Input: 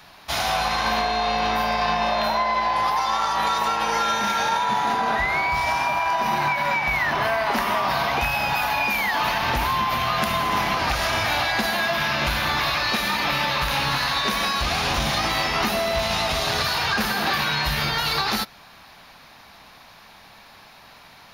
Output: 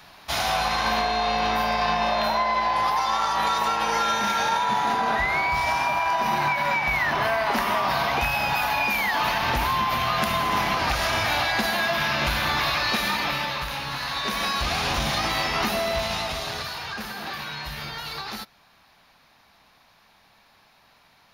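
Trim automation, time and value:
13.08 s -1 dB
13.84 s -8.5 dB
14.50 s -2 dB
15.91 s -2 dB
16.83 s -10.5 dB

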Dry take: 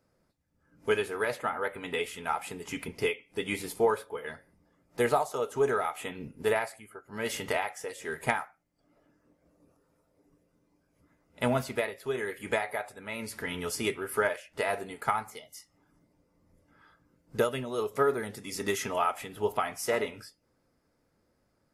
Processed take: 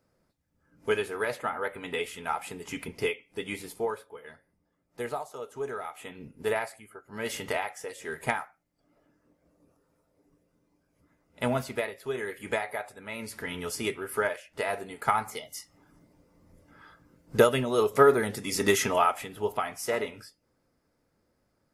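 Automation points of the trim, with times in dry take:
3.11 s 0 dB
4.20 s -8 dB
5.70 s -8 dB
6.62 s -0.5 dB
14.89 s -0.5 dB
15.35 s +7 dB
18.81 s +7 dB
19.45 s -0.5 dB

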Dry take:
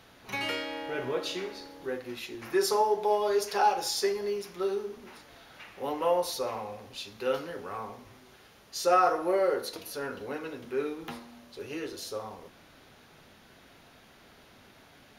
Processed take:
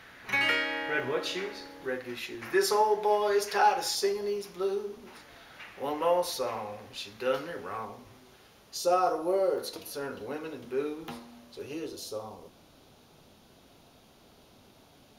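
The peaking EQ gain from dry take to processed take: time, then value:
peaking EQ 1.8 kHz 0.98 oct
+11.5 dB
from 1.00 s +5.5 dB
from 3.95 s -3.5 dB
from 5.15 s +3 dB
from 7.85 s -3.5 dB
from 8.77 s -12.5 dB
from 9.58 s -4 dB
from 11.73 s -11 dB

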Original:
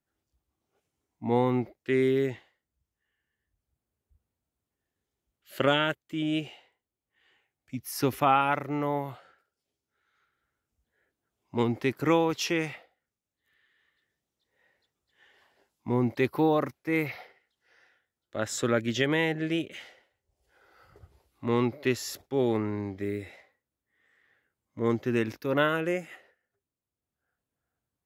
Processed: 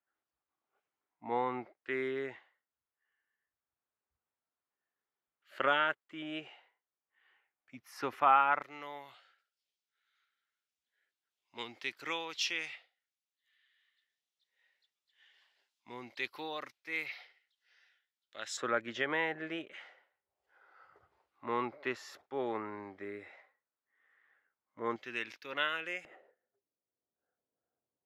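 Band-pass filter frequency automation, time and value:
band-pass filter, Q 1.2
1.3 kHz
from 8.62 s 3.5 kHz
from 18.57 s 1.2 kHz
from 24.96 s 2.8 kHz
from 26.05 s 520 Hz

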